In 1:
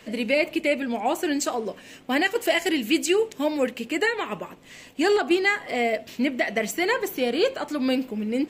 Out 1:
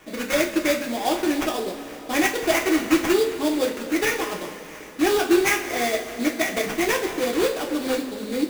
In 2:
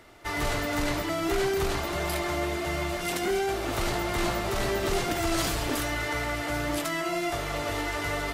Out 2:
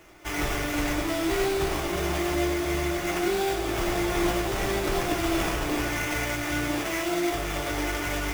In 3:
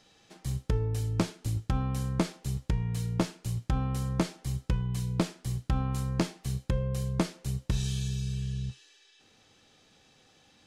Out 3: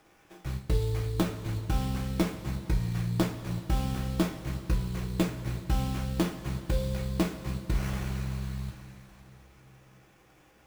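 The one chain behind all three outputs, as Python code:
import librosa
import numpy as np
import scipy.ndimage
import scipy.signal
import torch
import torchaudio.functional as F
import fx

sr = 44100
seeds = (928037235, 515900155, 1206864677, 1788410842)

y = fx.sample_hold(x, sr, seeds[0], rate_hz=4200.0, jitter_pct=20)
y = fx.rev_double_slope(y, sr, seeds[1], early_s=0.25, late_s=3.8, knee_db=-18, drr_db=-0.5)
y = y * librosa.db_to_amplitude(-2.0)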